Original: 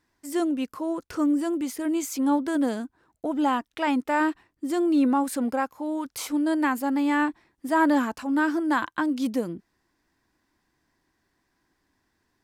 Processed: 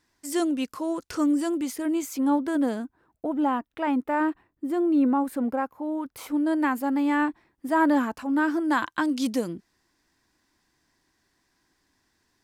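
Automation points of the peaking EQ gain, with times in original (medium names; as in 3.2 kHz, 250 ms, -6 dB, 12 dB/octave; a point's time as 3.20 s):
peaking EQ 6.1 kHz 2.3 oct
1.37 s +6 dB
2.07 s -4.5 dB
2.71 s -4.5 dB
3.48 s -14.5 dB
6.03 s -14.5 dB
6.64 s -5 dB
8.41 s -5 dB
9.07 s +7 dB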